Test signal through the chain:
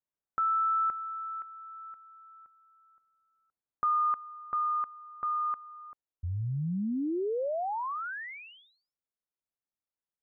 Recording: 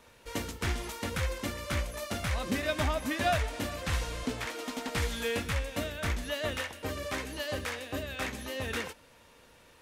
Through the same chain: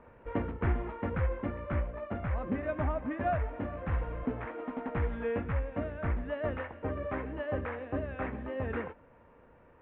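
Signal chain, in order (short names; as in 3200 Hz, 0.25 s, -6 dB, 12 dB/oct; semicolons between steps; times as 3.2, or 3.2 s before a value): vocal rider 2 s; Gaussian blur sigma 5.2 samples; gain +1 dB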